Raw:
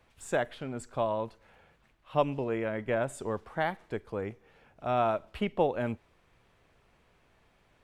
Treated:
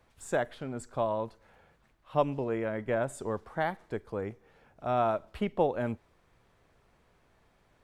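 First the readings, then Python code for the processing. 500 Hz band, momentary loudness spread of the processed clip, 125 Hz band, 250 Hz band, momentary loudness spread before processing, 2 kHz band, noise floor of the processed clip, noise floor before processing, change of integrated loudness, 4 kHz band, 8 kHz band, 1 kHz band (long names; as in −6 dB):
0.0 dB, 10 LU, 0.0 dB, 0.0 dB, 10 LU, −1.5 dB, −67 dBFS, −67 dBFS, 0.0 dB, −3.5 dB, 0.0 dB, 0.0 dB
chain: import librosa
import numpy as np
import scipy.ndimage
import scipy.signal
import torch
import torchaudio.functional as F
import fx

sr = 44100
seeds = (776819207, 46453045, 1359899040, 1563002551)

y = fx.peak_eq(x, sr, hz=2700.0, db=-5.0, octaves=0.78)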